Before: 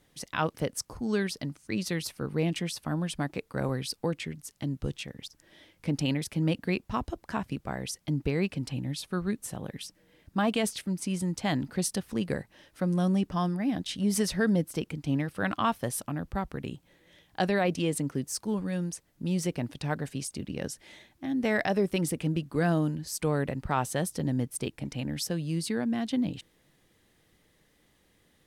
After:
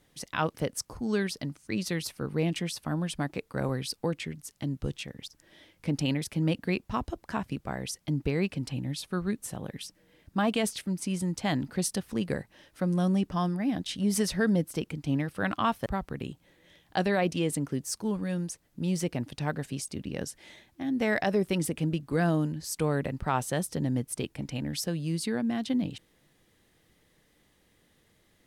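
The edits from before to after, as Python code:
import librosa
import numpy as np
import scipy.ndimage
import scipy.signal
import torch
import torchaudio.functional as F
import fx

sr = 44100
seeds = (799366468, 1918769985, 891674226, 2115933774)

y = fx.edit(x, sr, fx.cut(start_s=15.86, length_s=0.43), tone=tone)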